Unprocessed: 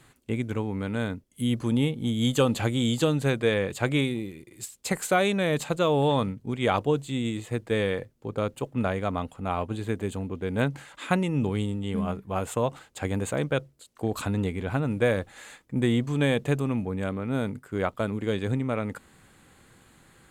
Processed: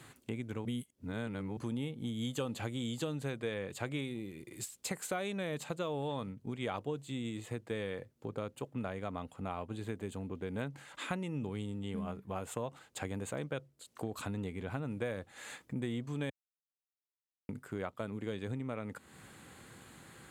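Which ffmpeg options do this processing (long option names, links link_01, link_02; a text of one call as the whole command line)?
ffmpeg -i in.wav -filter_complex "[0:a]asplit=5[link_01][link_02][link_03][link_04][link_05];[link_01]atrim=end=0.652[link_06];[link_02]atrim=start=0.648:end=1.572,asetpts=PTS-STARTPTS,areverse[link_07];[link_03]atrim=start=1.568:end=16.3,asetpts=PTS-STARTPTS,afade=type=out:start_time=14.728:duration=0.004:curve=hsin[link_08];[link_04]atrim=start=16.3:end=17.49,asetpts=PTS-STARTPTS,volume=0[link_09];[link_05]atrim=start=17.49,asetpts=PTS-STARTPTS,afade=type=in:duration=0.004:curve=hsin[link_10];[link_06][link_07]acrossfade=duration=0.004:curve1=hsin:curve2=hsin[link_11];[link_08][link_09][link_10]concat=n=3:v=0:a=1[link_12];[link_11][link_12]acrossfade=duration=0.004:curve1=hsin:curve2=hsin,highpass=76,acompressor=threshold=-44dB:ratio=2.5,volume=2dB" out.wav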